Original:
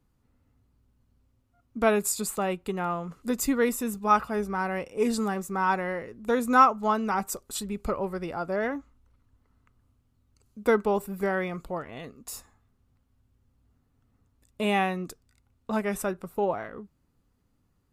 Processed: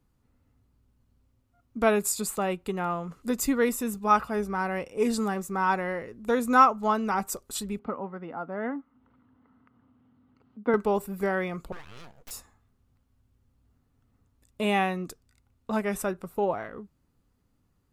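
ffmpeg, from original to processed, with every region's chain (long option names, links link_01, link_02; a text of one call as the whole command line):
ffmpeg -i in.wav -filter_complex "[0:a]asettb=1/sr,asplit=3[link_01][link_02][link_03];[link_01]atrim=end=7.794[link_04];[link_02]atrim=start=7.79:end=10.74,asetpts=PTS-STARTPTS,afade=type=in:duration=0.004:curve=qsin,afade=type=out:start_time=2.946:duration=0.004:curve=qsin,highpass=220,equalizer=frequency=250:width_type=q:width=4:gain=6,equalizer=frequency=370:width_type=q:width=4:gain=-8,equalizer=frequency=590:width_type=q:width=4:gain=-7,equalizer=frequency=1100:width_type=q:width=4:gain=-3,equalizer=frequency=1700:width_type=q:width=4:gain=-5,equalizer=frequency=2400:width_type=q:width=4:gain=-10,lowpass=frequency=2500:width=0.5412,lowpass=frequency=2500:width=1.3066,acompressor=mode=upward:threshold=-50dB:ratio=2.5:attack=3.2:release=140:knee=2.83:detection=peak[link_05];[link_03]atrim=start=10.736[link_06];[link_04][link_05]acrossfade=duration=0.004:curve1=hsin:curve2=qsin[link_07];[link_07][link_06]acrossfade=duration=0.004:curve1=qsin:curve2=hsin,asettb=1/sr,asplit=3[link_08][link_09][link_10];[link_08]atrim=end=11.724[link_11];[link_09]atrim=start=11.72:end=12.31,asetpts=PTS-STARTPTS,afade=type=in:duration=0.004:curve=qsin,afade=type=out:start_time=0.586:duration=0.004:curve=qsin,bass=frequency=250:gain=-8,treble=frequency=4000:gain=0,acompressor=threshold=-41dB:ratio=2:attack=3.2:release=140:knee=1:detection=peak,aeval=exprs='abs(val(0))':channel_layout=same[link_12];[link_10]atrim=start=12.306[link_13];[link_11][link_12]acrossfade=duration=0.004:curve1=hsin:curve2=qsin[link_14];[link_14][link_13]acrossfade=duration=0.004:curve1=qsin:curve2=hsin" out.wav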